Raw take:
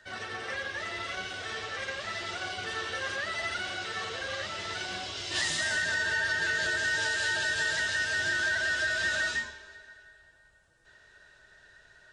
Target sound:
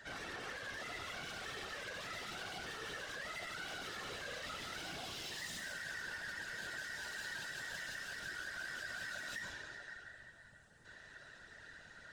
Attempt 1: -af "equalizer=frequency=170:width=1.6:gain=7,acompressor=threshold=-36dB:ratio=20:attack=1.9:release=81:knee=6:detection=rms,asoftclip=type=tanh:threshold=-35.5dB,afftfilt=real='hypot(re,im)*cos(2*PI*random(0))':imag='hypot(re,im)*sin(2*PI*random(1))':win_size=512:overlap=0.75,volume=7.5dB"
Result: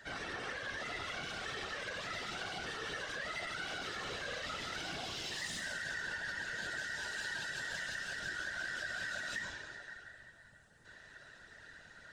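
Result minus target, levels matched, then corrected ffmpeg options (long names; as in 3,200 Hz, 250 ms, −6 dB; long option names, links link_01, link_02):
soft clipping: distortion −9 dB
-af "equalizer=frequency=170:width=1.6:gain=7,acompressor=threshold=-36dB:ratio=20:attack=1.9:release=81:knee=6:detection=rms,asoftclip=type=tanh:threshold=-44dB,afftfilt=real='hypot(re,im)*cos(2*PI*random(0))':imag='hypot(re,im)*sin(2*PI*random(1))':win_size=512:overlap=0.75,volume=7.5dB"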